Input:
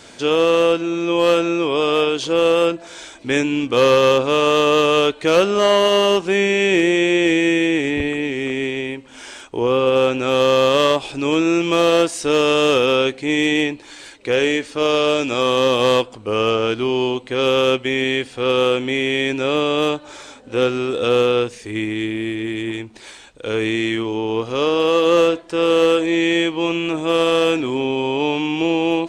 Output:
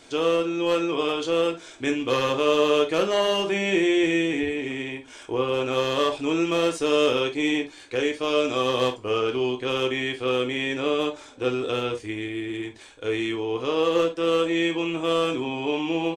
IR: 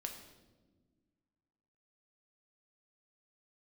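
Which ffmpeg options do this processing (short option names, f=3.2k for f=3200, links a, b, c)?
-filter_complex "[0:a]atempo=1.8[a];[1:a]atrim=start_sample=2205,afade=t=out:st=0.18:d=0.01,atrim=end_sample=8379,asetrate=83790,aresample=44100[b];[a][b]afir=irnorm=-1:irlink=0,volume=1.5dB"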